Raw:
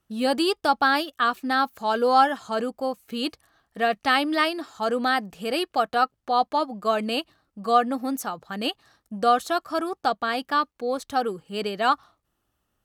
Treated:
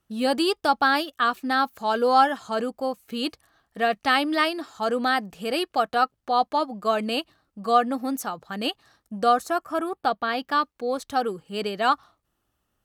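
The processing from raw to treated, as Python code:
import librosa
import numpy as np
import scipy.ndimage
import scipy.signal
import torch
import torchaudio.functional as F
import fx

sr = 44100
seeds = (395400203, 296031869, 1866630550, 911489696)

y = fx.peak_eq(x, sr, hz=fx.line((9.32, 2900.0), (10.48, 10000.0)), db=-15.0, octaves=0.5, at=(9.32, 10.48), fade=0.02)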